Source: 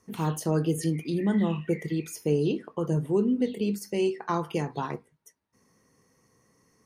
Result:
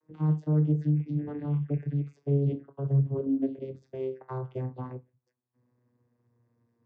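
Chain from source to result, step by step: vocoder on a note that slides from D#3, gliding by -5 st; Bessel low-pass 4.7 kHz; treble shelf 2.4 kHz -9 dB

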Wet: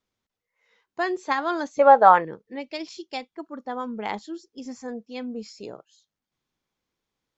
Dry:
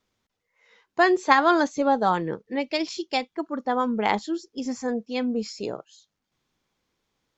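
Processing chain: 1.79–2.25 s: high-order bell 1.1 kHz +16 dB 2.8 oct; trim -7 dB

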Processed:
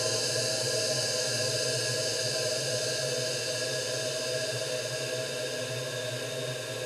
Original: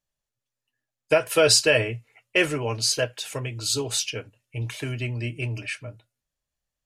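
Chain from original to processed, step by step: Paulstretch 20×, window 1.00 s, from 2.93 s; flutter echo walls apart 10.2 m, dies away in 0.49 s; trim -4.5 dB

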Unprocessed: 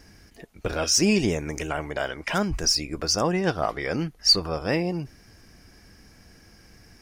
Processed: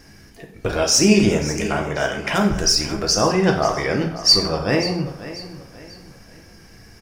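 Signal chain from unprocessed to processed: on a send: feedback delay 538 ms, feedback 36%, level -14.5 dB; on the sum: plate-style reverb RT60 0.71 s, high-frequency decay 0.7×, DRR 2 dB; trim +4 dB

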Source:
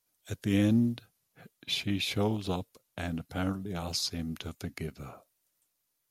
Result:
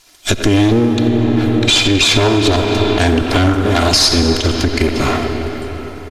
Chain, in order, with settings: comb filter that takes the minimum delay 2.9 ms; low-pass 5.1 kHz 12 dB/octave; speakerphone echo 90 ms, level -11 dB; reverberation RT60 4.6 s, pre-delay 20 ms, DRR 8.5 dB; compression 12:1, threshold -40 dBFS, peak gain reduction 17.5 dB; treble shelf 3.6 kHz +12 dB; loudness maximiser +32 dB; trim -1 dB

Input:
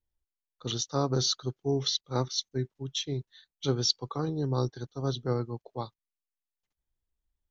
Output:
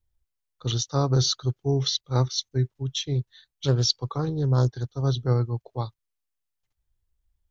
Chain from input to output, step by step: resonant low shelf 150 Hz +7 dB, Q 1.5; 3.15–5.02 s: loudspeaker Doppler distortion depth 0.28 ms; trim +3 dB

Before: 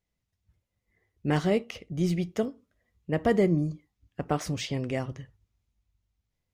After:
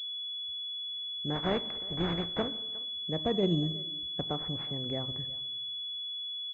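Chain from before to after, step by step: 1.34–2.47 s: spectral contrast reduction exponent 0.5; in parallel at +0.5 dB: compression, threshold -36 dBFS, peak gain reduction 16.5 dB; on the sum: random-step tremolo; speakerphone echo 360 ms, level -20 dB; on a send at -17.5 dB: reverberation RT60 1.0 s, pre-delay 69 ms; on the sum: class-D stage that switches slowly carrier 3.4 kHz; trim -5 dB

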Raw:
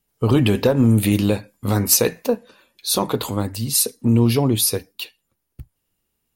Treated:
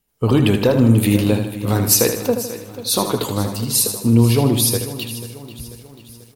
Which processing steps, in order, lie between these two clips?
feedback delay 78 ms, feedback 50%, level -8 dB; bit-crushed delay 490 ms, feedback 55%, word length 7-bit, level -15 dB; trim +1 dB

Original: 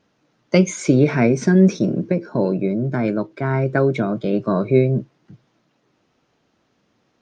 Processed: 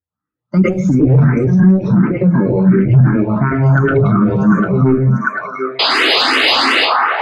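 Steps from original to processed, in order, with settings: expander on every frequency bin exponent 1.5; FFT filter 200 Hz 0 dB, 700 Hz -9 dB, 1.3 kHz +3 dB, 3.1 kHz -19 dB; level rider gain up to 15.5 dB; high-pass sweep 66 Hz -> 1.4 kHz, 3.63–7.04 s; level held to a coarse grid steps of 10 dB; painted sound noise, 5.79–6.75 s, 230–5000 Hz -14 dBFS; repeats whose band climbs or falls 747 ms, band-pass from 1 kHz, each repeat 0.7 oct, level -3 dB; reverberation RT60 0.35 s, pre-delay 99 ms, DRR -5.5 dB; saturation -0.5 dBFS, distortion -14 dB; loudness maximiser +12.5 dB; barber-pole phaser +2.8 Hz; trim -1.5 dB

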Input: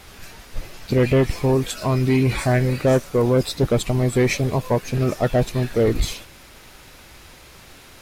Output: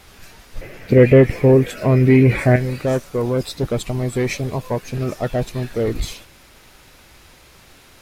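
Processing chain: 0.61–2.56 s: graphic EQ 125/250/500/1000/2000/4000/8000 Hz +7/+5/+11/-4/+11/-6/-4 dB; trim -2.5 dB

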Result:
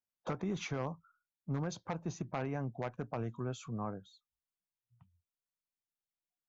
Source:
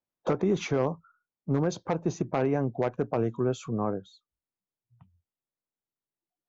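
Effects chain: peaking EQ 400 Hz -9 dB 1.4 oct; trim -6 dB

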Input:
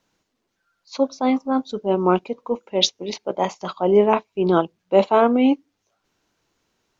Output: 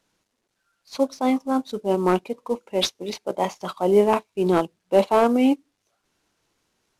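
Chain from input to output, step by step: CVSD coder 64 kbps; trim -1.5 dB

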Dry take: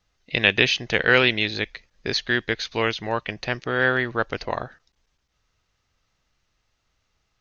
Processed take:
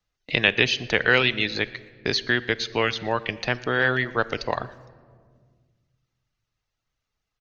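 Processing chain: gate with hold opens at -45 dBFS; echo from a far wall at 20 m, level -15 dB; reverb removal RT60 0.57 s; on a send at -16 dB: reverberation RT60 1.3 s, pre-delay 7 ms; on the sum: three bands compressed up and down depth 40%

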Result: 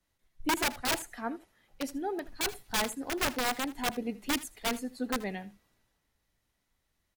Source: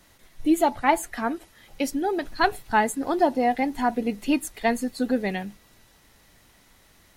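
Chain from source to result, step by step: integer overflow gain 15 dB; delay 79 ms -18 dB; three bands expanded up and down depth 40%; trim -8.5 dB

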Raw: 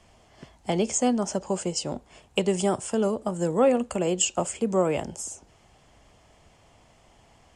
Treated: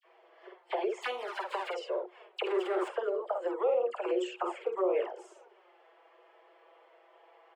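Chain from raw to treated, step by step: 0.99–1.67 s: formants flattened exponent 0.3; doubling 49 ms -3.5 dB; touch-sensitive flanger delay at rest 6.4 ms, full sweep at -17 dBFS; 2.44–2.88 s: power-law waveshaper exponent 0.5; distance through air 480 m; phase dispersion lows, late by 45 ms, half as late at 1.9 kHz; in parallel at -1.5 dB: compression, threshold -31 dBFS, peak gain reduction 13.5 dB; on the sum: peak limiter -18 dBFS, peak gain reduction 8 dB; rippled Chebyshev high-pass 350 Hz, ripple 3 dB

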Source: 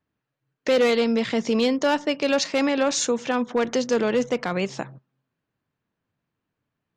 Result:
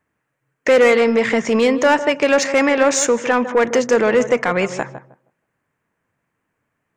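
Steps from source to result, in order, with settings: ten-band graphic EQ 500 Hz +4 dB, 1 kHz +4 dB, 2 kHz +10 dB, 4 kHz -9 dB, 8 kHz +8 dB; in parallel at -4.5 dB: saturation -18 dBFS, distortion -9 dB; on the sum: tape echo 156 ms, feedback 22%, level -9.5 dB, low-pass 1.1 kHz

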